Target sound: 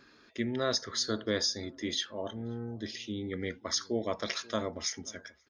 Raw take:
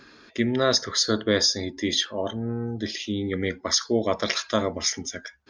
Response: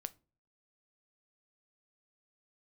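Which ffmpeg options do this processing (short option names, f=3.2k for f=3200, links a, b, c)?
-filter_complex "[0:a]asplit=2[a][b];[b]adelay=533,lowpass=f=1.1k:p=1,volume=-23dB,asplit=2[c][d];[d]adelay=533,lowpass=f=1.1k:p=1,volume=0.39,asplit=2[e][f];[f]adelay=533,lowpass=f=1.1k:p=1,volume=0.39[g];[a][c][e][g]amix=inputs=4:normalize=0,volume=-9dB"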